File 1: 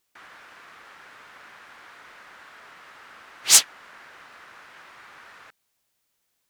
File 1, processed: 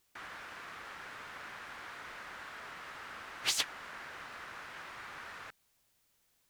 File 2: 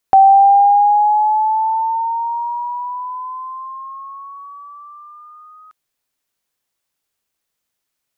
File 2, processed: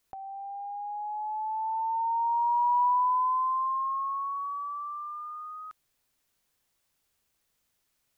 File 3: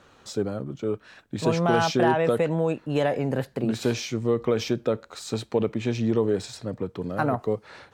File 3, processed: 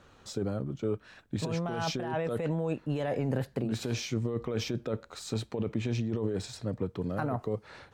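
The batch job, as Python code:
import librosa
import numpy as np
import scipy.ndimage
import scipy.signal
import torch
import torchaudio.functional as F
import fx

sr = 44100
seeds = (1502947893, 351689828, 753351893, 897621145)

y = fx.low_shelf(x, sr, hz=130.0, db=8.5)
y = fx.over_compress(y, sr, threshold_db=-24.0, ratio=-1.0)
y = y * librosa.db_to_amplitude(-6.5)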